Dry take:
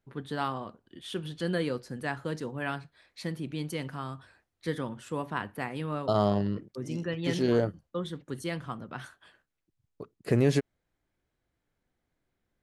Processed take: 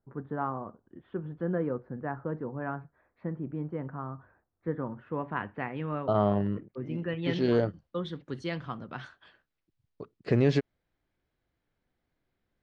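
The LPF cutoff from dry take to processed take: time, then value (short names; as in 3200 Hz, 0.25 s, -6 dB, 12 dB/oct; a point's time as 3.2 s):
LPF 24 dB/oct
4.77 s 1400 Hz
5.46 s 2600 Hz
7.03 s 2600 Hz
7.53 s 5100 Hz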